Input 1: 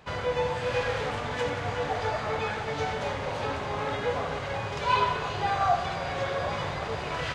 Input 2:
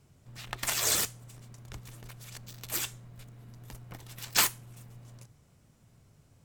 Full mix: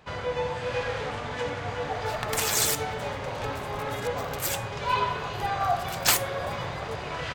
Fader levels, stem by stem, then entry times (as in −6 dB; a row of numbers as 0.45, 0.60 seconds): −1.5, +2.5 decibels; 0.00, 1.70 seconds